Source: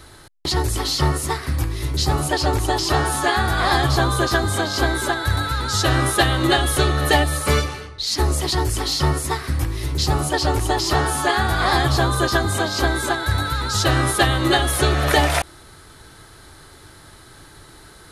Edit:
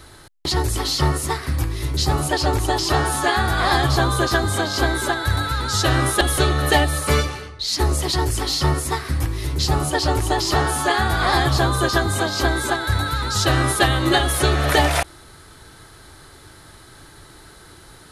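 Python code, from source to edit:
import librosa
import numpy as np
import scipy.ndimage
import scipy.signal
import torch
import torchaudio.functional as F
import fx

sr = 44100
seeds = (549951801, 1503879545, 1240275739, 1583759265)

y = fx.edit(x, sr, fx.cut(start_s=6.21, length_s=0.39), tone=tone)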